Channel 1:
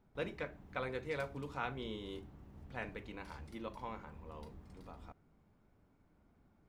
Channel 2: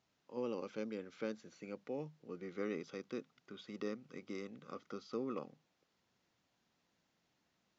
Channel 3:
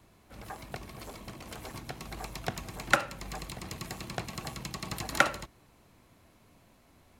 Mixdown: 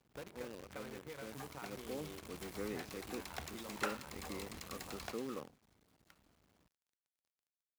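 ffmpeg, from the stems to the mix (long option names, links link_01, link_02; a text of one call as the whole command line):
ffmpeg -i stem1.wav -i stem2.wav -i stem3.wav -filter_complex "[0:a]equalizer=frequency=7000:width=0.61:gain=-9.5,acompressor=threshold=-47dB:ratio=8,volume=0.5dB,asplit=2[link_01][link_02];[1:a]volume=-2dB,afade=type=in:start_time=1.36:duration=0.39:silence=0.446684[link_03];[2:a]highpass=frequency=780:poles=1,adelay=900,volume=-7dB[link_04];[link_02]apad=whole_len=357189[link_05];[link_04][link_05]sidechaingate=range=-33dB:threshold=-59dB:ratio=16:detection=peak[link_06];[link_01][link_03][link_06]amix=inputs=3:normalize=0,acrusher=bits=9:dc=4:mix=0:aa=0.000001,asoftclip=type=tanh:threshold=-27.5dB,highpass=43" out.wav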